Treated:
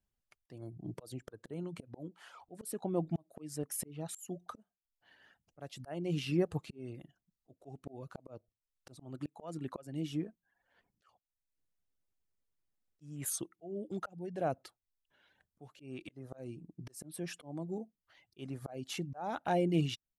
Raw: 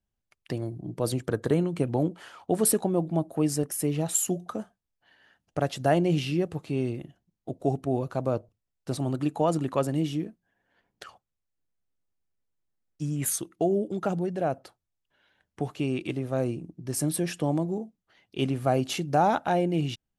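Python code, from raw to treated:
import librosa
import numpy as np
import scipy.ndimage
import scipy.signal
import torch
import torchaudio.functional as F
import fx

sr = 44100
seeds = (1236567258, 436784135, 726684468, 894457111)

y = fx.auto_swell(x, sr, attack_ms=621.0)
y = fx.dereverb_blind(y, sr, rt60_s=0.61)
y = y * 10.0 ** (-2.0 / 20.0)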